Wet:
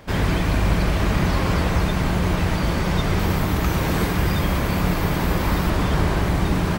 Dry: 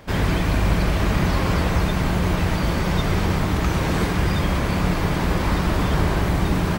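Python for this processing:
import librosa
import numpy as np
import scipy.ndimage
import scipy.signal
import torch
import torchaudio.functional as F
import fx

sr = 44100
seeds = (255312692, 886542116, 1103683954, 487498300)

y = fx.peak_eq(x, sr, hz=14000.0, db=11.5, octaves=0.39, at=(3.19, 5.7))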